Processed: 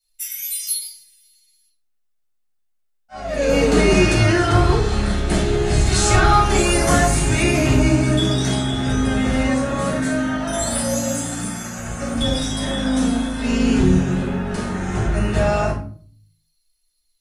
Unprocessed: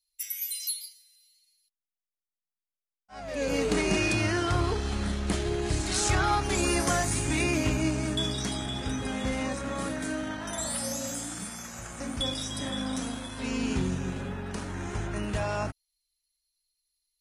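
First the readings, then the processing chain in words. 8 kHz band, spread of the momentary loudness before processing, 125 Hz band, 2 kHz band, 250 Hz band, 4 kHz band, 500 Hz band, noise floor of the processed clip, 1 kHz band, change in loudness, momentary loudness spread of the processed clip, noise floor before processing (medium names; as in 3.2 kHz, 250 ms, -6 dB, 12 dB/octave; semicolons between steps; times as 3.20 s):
+8.0 dB, 10 LU, +12.5 dB, +9.5 dB, +11.5 dB, +8.0 dB, +12.0 dB, -66 dBFS, +10.5 dB, +11.0 dB, 10 LU, under -85 dBFS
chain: simulated room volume 390 m³, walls furnished, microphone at 7.4 m; trim -1 dB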